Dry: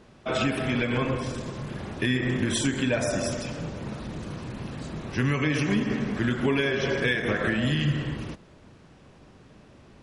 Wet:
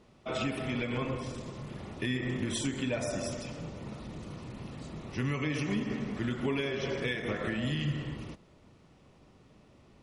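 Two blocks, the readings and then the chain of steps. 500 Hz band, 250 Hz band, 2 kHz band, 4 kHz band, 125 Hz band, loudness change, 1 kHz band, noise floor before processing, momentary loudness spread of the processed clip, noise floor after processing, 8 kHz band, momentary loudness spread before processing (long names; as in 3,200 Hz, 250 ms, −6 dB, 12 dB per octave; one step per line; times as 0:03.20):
−7.0 dB, −7.0 dB, −9.0 dB, −7.0 dB, −7.0 dB, −7.5 dB, −7.5 dB, −53 dBFS, 11 LU, −60 dBFS, −7.0 dB, 12 LU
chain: notch filter 1,600 Hz, Q 6.9
level −7 dB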